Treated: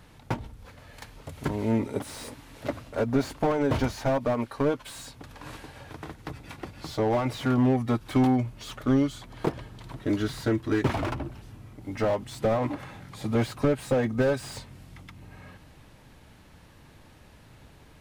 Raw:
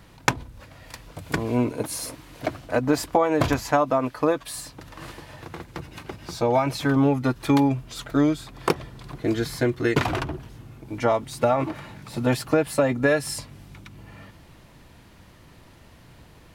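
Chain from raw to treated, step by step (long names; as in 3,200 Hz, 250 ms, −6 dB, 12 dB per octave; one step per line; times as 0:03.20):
wrong playback speed 48 kHz file played as 44.1 kHz
slew-rate limiting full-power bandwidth 71 Hz
level −2.5 dB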